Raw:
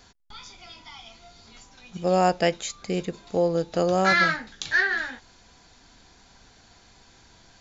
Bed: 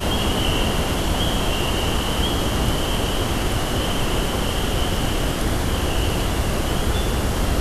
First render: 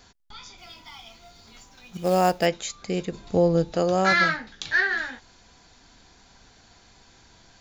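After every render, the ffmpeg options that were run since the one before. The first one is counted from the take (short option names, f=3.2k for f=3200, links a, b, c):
-filter_complex "[0:a]asplit=3[a][b][c];[a]afade=t=out:st=0.57:d=0.02[d];[b]acrusher=bits=5:mode=log:mix=0:aa=0.000001,afade=t=in:st=0.57:d=0.02,afade=t=out:st=2.45:d=0.02[e];[c]afade=t=in:st=2.45:d=0.02[f];[d][e][f]amix=inputs=3:normalize=0,asettb=1/sr,asplit=3[g][h][i];[g]atrim=end=3.124[j];[h]atrim=start=3.12:end=3.73,asetpts=PTS-STARTPTS,afade=t=in:d=0.004:c=qsin,afade=t=out:st=0.606:d=0.004:c=qsin,lowshelf=f=230:g=11[k];[i]atrim=start=3.726[l];[j][k]acrossfade=d=0.004:c1=hsin:c2=qsin[m];[m][l]acrossfade=d=0.004:c1=qsin:c2=hsin,asettb=1/sr,asplit=3[n][o][p];[n]atrim=end=4.294[q];[o]atrim=start=4.29:end=4.83,asetpts=PTS-STARTPTS,afade=t=in:d=0.004:c=qsin,afade=t=out:st=0.536:d=0.004:c=qsin,lowpass=6k[r];[p]atrim=start=4.826[s];[q][r]acrossfade=d=0.004:c1=hsin:c2=qsin[t];[t][s]acrossfade=d=0.004:c1=qsin:c2=hsin"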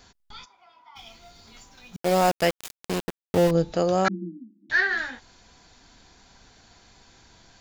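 -filter_complex "[0:a]asplit=3[a][b][c];[a]afade=t=out:st=0.44:d=0.02[d];[b]bandpass=f=980:t=q:w=2.5,afade=t=in:st=0.44:d=0.02,afade=t=out:st=0.95:d=0.02[e];[c]afade=t=in:st=0.95:d=0.02[f];[d][e][f]amix=inputs=3:normalize=0,asettb=1/sr,asplit=3[g][h][i];[g]atrim=end=1.964[j];[h]atrim=start=1.96:end=3.51,asetpts=PTS-STARTPTS,afade=t=in:d=0.004:c=qsin,afade=t=out:st=1.546:d=0.004:c=qsin,aeval=exprs='val(0)*gte(abs(val(0)),0.0596)':c=same[k];[i]atrim=start=3.506[l];[j][k]acrossfade=d=0.004:c1=hsin:c2=qsin[m];[m][l]acrossfade=d=0.004:c1=qsin:c2=hsin,asettb=1/sr,asplit=3[n][o][p];[n]atrim=end=4.084[q];[o]atrim=start=4.08:end=4.7,asetpts=PTS-STARTPTS,afade=t=in:d=0.004:c=qsin,afade=t=out:st=0.616:d=0.004:c=qsin,asuperpass=centerf=250:order=20:qfactor=1.4[r];[p]atrim=start=4.696[s];[q][r]acrossfade=d=0.004:c1=hsin:c2=qsin[t];[t][s]acrossfade=d=0.004:c1=qsin:c2=hsin"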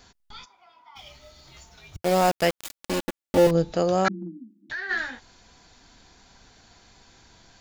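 -filter_complex "[0:a]asettb=1/sr,asplit=3[a][b][c];[a]atrim=end=1.014[d];[b]atrim=start=1.01:end=2.02,asetpts=PTS-STARTPTS,afade=t=in:d=0.004:c=qsin,afade=t=out:st=1.006:d=0.004:c=qsin,afreqshift=-90[e];[c]atrim=start=2.016[f];[d][e]acrossfade=d=0.004:c1=hsin:c2=qsin[g];[g][f]acrossfade=d=0.004:c1=qsin:c2=hsin,asettb=1/sr,asplit=3[h][i][j];[h]atrim=end=2.654[k];[i]atrim=start=2.65:end=3.47,asetpts=PTS-STARTPTS,afade=t=in:d=0.004:c=qsin,afade=t=out:st=0.816:d=0.004:c=qsin,aecho=1:1:3.5:0.78,atrim=end_sample=36162[l];[j]atrim=start=3.466[m];[k][l]acrossfade=d=0.004:c1=hsin:c2=qsin[n];[n][m]acrossfade=d=0.004:c1=qsin:c2=hsin,asplit=3[o][p][q];[o]afade=t=out:st=4.11:d=0.02[r];[p]acompressor=threshold=-30dB:ratio=6:attack=3.2:release=140:knee=1:detection=peak,afade=t=in:st=4.11:d=0.02,afade=t=out:st=4.89:d=0.02[s];[q]afade=t=in:st=4.89:d=0.02[t];[r][s][t]amix=inputs=3:normalize=0"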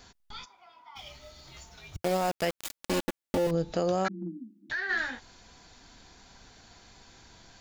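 -af "alimiter=limit=-18.5dB:level=0:latency=1:release=196"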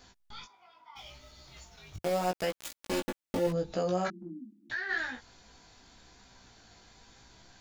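-af "flanger=delay=15.5:depth=4:speed=0.8"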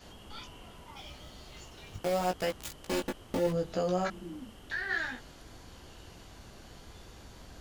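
-filter_complex "[1:a]volume=-30.5dB[a];[0:a][a]amix=inputs=2:normalize=0"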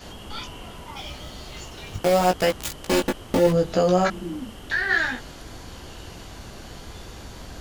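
-af "volume=11dB"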